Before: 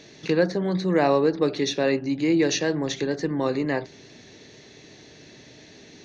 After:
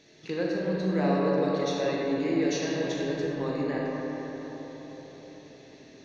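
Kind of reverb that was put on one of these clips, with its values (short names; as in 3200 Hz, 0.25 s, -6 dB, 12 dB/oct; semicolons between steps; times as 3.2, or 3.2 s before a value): digital reverb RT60 4.9 s, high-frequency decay 0.4×, pre-delay 0 ms, DRR -4.5 dB; gain -11 dB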